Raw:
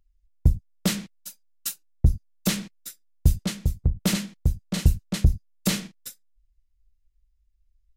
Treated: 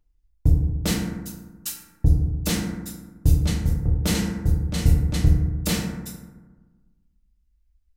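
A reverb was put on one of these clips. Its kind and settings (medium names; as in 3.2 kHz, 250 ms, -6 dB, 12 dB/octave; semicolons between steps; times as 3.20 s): FDN reverb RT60 1.3 s, low-frequency decay 1.25×, high-frequency decay 0.35×, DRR -2.5 dB; trim -2 dB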